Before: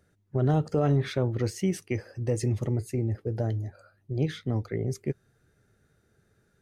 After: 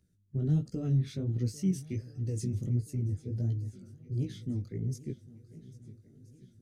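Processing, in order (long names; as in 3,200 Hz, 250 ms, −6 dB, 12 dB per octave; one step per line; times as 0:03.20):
drawn EQ curve 240 Hz 0 dB, 870 Hz −24 dB, 5,800 Hz −2 dB
pitch vibrato 9.8 Hz 11 cents
feedback echo with a long and a short gap by turns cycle 1,326 ms, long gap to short 1.5 to 1, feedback 53%, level −19.5 dB
chorus effect 1.4 Hz, delay 16 ms, depth 5.6 ms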